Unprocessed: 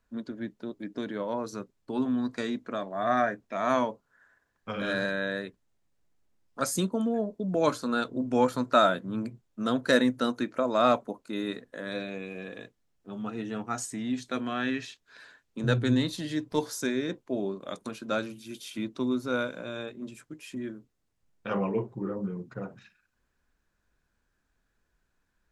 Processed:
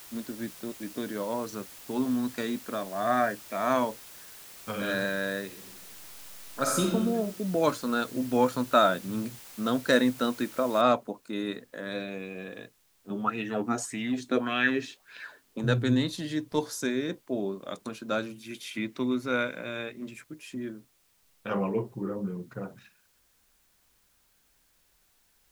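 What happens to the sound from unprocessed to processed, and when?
0:05.46–0:06.89: thrown reverb, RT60 1.2 s, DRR −0.5 dB
0:10.81: noise floor change −48 dB −68 dB
0:13.10–0:15.61: auto-filter bell 1.7 Hz 260–2,800 Hz +15 dB
0:18.43–0:20.24: parametric band 2,100 Hz +11 dB 0.61 octaves

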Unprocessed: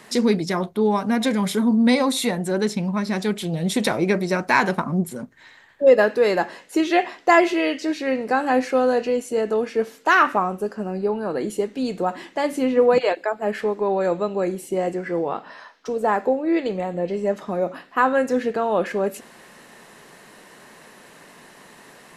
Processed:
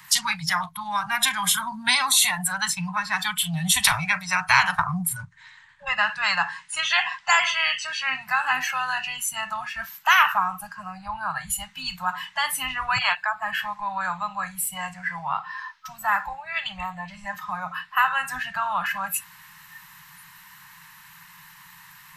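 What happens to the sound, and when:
0:05.16–0:08.14: linear-phase brick-wall low-pass 9,900 Hz
whole clip: Chebyshev band-stop filter 170–920 Hz, order 4; noise reduction from a noise print of the clip's start 20 dB; every bin compressed towards the loudest bin 2 to 1; level +2 dB

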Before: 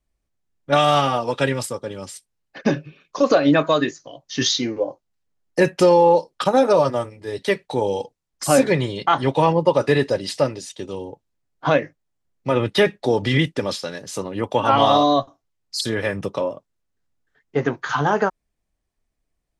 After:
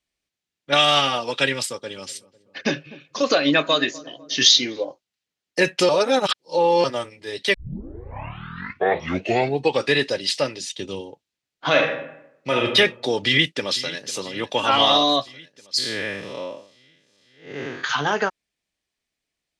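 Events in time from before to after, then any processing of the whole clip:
0:01.60–0:04.85: feedback echo with a low-pass in the loop 249 ms, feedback 60%, low-pass 940 Hz, level −18.5 dB
0:05.89–0:06.84: reverse
0:07.54: tape start 2.39 s
0:10.60–0:11.01: low-shelf EQ 250 Hz +10.5 dB
0:11.68–0:12.64: thrown reverb, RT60 0.82 s, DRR 0.5 dB
0:13.25–0:14.16: delay throw 500 ms, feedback 70%, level −16.5 dB
0:15.78–0:17.84: spectrum smeared in time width 188 ms
whole clip: meter weighting curve D; level −3.5 dB

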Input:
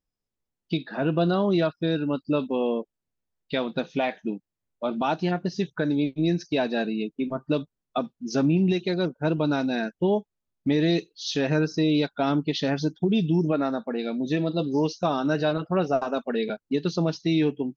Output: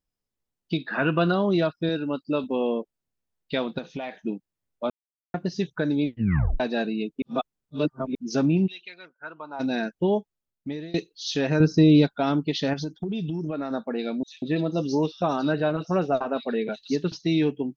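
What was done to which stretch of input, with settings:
0:00.88–0:01.32: flat-topped bell 1,700 Hz +9.5 dB
0:01.89–0:02.44: low-shelf EQ 130 Hz −11.5 dB
0:03.78–0:04.20: downward compressor 5 to 1, threshold −29 dBFS
0:04.90–0:05.34: silence
0:06.07: tape stop 0.53 s
0:07.22–0:08.15: reverse
0:08.66–0:09.59: resonant band-pass 3,700 Hz → 840 Hz, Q 3.8
0:10.17–0:10.94: fade out, to −24 dB
0:11.60–0:12.12: low-shelf EQ 340 Hz +11 dB
0:12.73–0:13.71: downward compressor, threshold −26 dBFS
0:14.23–0:17.12: multiband delay without the direct sound highs, lows 190 ms, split 3,500 Hz

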